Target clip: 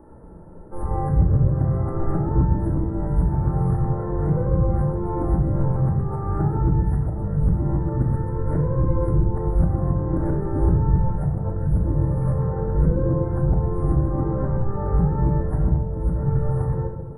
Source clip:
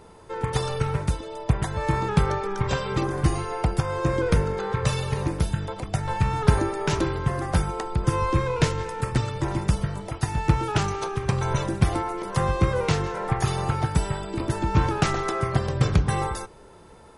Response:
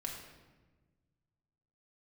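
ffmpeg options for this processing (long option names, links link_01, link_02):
-filter_complex "[0:a]areverse,asuperstop=centerf=4200:order=12:qfactor=0.59,acrossover=split=750[link_01][link_02];[link_02]alimiter=limit=-23dB:level=0:latency=1:release=367[link_03];[link_01][link_03]amix=inputs=2:normalize=0,tiltshelf=frequency=970:gain=9.5,acompressor=threshold=-23dB:ratio=1.5[link_04];[1:a]atrim=start_sample=2205,asetrate=52920,aresample=44100[link_05];[link_04][link_05]afir=irnorm=-1:irlink=0"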